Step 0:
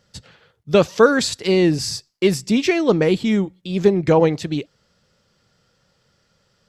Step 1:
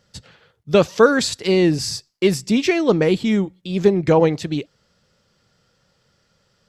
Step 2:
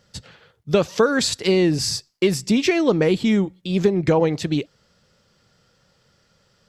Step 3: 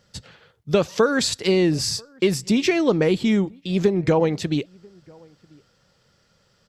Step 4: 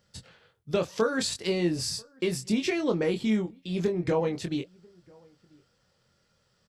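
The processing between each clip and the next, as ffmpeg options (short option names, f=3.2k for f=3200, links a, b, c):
-af anull
-af "acompressor=threshold=-16dB:ratio=4,volume=2dB"
-filter_complex "[0:a]asplit=2[a][b];[b]adelay=991.3,volume=-28dB,highshelf=f=4k:g=-22.3[c];[a][c]amix=inputs=2:normalize=0,volume=-1dB"
-filter_complex "[0:a]aexciter=amount=1.6:drive=2.9:freq=8.8k,asplit=2[a][b];[b]adelay=23,volume=-5.5dB[c];[a][c]amix=inputs=2:normalize=0,volume=-8.5dB"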